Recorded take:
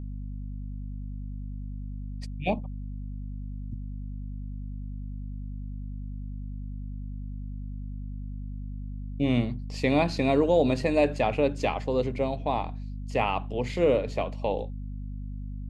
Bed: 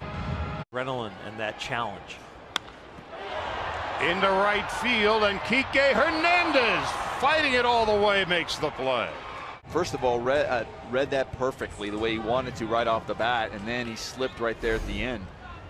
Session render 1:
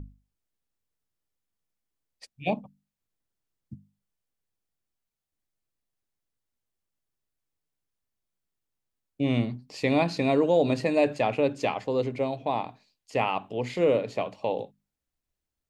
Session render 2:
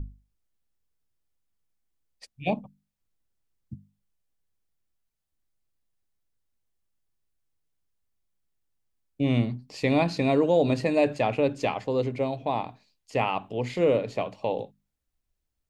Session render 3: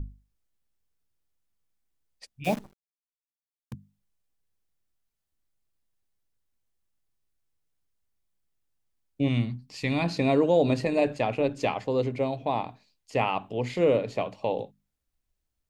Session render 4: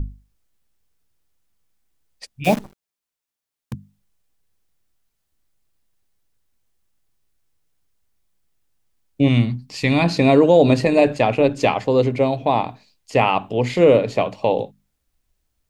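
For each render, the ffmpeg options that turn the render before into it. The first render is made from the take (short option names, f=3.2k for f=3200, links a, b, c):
-af "bandreject=f=50:t=h:w=6,bandreject=f=100:t=h:w=6,bandreject=f=150:t=h:w=6,bandreject=f=200:t=h:w=6,bandreject=f=250:t=h:w=6"
-af "lowshelf=f=89:g=9"
-filter_complex "[0:a]asettb=1/sr,asplit=3[a][b][c];[a]atrim=end=2.444[d];[b]atrim=start=2.44:end=3.73,asetpts=PTS-STARTPTS,afade=t=in:d=0.004:c=qsin,afade=t=out:st=1.286:d=0.004:c=qsin,acrusher=bits=7:dc=4:mix=0:aa=0.000001[e];[c]atrim=start=3.726[f];[d][e]acrossfade=d=0.004:c1=hsin:c2=qsin[g];[g][f]acrossfade=d=0.004:c1=qsin:c2=hsin,asettb=1/sr,asplit=3[h][i][j];[h]atrim=end=9.284[k];[i]atrim=start=9.28:end=10.04,asetpts=PTS-STARTPTS,afade=t=in:d=0.004:c=qsin,afade=t=out:st=0.756:d=0.004:c=qsin,equalizer=f=520:w=0.87:g=-10[l];[j]atrim=start=10.036[m];[k][l]acrossfade=d=0.004:c1=hsin:c2=qsin[n];[n][m]acrossfade=d=0.004:c1=qsin:c2=hsin,asettb=1/sr,asplit=3[o][p][q];[o]atrim=end=10.854[r];[p]atrim=start=10.85:end=11.57,asetpts=PTS-STARTPTS,afade=t=in:d=0.004:c=qsin,afade=t=out:st=0.716:d=0.004:c=qsin,tremolo=f=120:d=0.4[s];[q]atrim=start=11.566[t];[r][s]acrossfade=d=0.004:c1=hsin:c2=qsin[u];[u][t]acrossfade=d=0.004:c1=qsin:c2=hsin"
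-af "volume=9.5dB,alimiter=limit=-3dB:level=0:latency=1"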